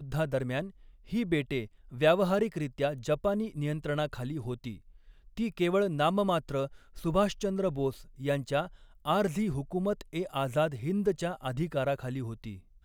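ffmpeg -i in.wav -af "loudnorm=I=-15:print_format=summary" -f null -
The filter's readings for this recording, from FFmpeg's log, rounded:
Input Integrated:    -31.3 LUFS
Input True Peak:     -12.1 dBTP
Input LRA:             2.5 LU
Input Threshold:     -41.8 LUFS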